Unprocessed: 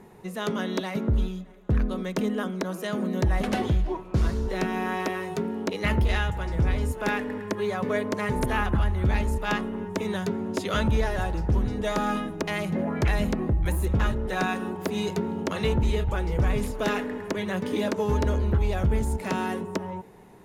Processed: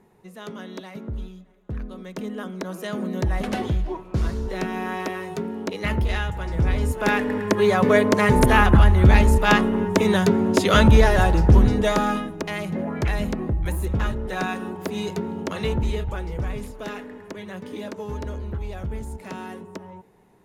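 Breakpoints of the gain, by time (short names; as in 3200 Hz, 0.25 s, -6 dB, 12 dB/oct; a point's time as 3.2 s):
1.92 s -8 dB
2.8 s 0 dB
6.3 s 0 dB
7.69 s +10 dB
11.67 s +10 dB
12.33 s 0 dB
15.84 s 0 dB
16.82 s -7 dB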